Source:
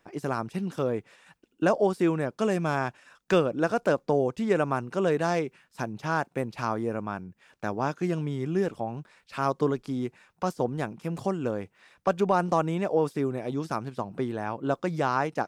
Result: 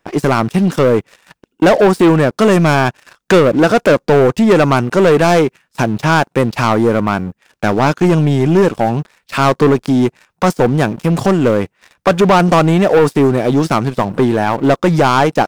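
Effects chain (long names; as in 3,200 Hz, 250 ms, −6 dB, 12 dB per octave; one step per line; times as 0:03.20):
leveller curve on the samples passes 3
level +8.5 dB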